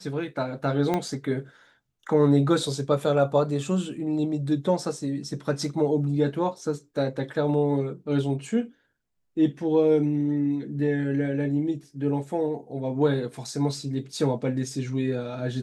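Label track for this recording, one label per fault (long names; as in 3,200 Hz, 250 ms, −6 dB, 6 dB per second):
0.940000	0.940000	click −13 dBFS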